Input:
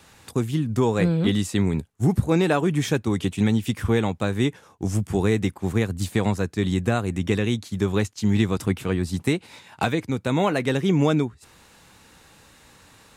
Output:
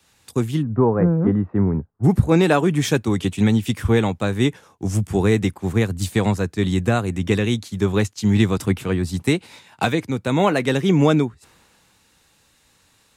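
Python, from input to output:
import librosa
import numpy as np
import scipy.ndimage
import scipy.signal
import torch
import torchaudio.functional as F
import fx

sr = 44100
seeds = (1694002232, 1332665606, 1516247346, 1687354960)

y = fx.lowpass(x, sr, hz=1400.0, slope=24, at=(0.61, 2.03), fade=0.02)
y = fx.band_widen(y, sr, depth_pct=40)
y = y * 10.0 ** (3.5 / 20.0)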